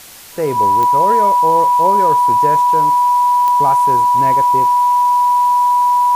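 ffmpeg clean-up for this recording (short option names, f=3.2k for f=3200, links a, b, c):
-af "adeclick=t=4,bandreject=f=980:w=30,afwtdn=0.016"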